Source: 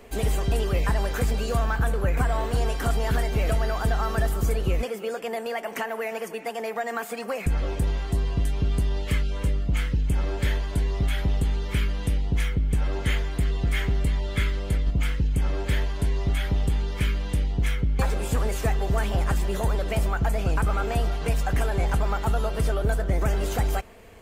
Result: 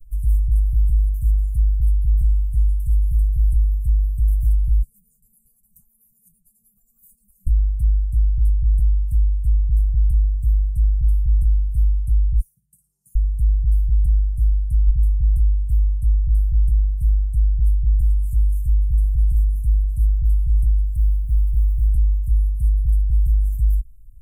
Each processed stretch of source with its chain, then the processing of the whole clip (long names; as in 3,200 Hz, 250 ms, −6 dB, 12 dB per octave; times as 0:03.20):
0:12.40–0:13.15: high-pass filter 330 Hz 24 dB per octave + double-tracking delay 16 ms −12 dB + flutter between parallel walls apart 9.5 metres, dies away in 0.39 s
0:20.96–0:21.88: head-to-tape spacing loss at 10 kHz 21 dB + phaser with its sweep stopped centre 1,400 Hz, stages 6 + floating-point word with a short mantissa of 2 bits
whole clip: inverse Chebyshev band-stop filter 300–3,800 Hz, stop band 60 dB; spectral tilt −2 dB per octave; comb filter 6 ms, depth 69%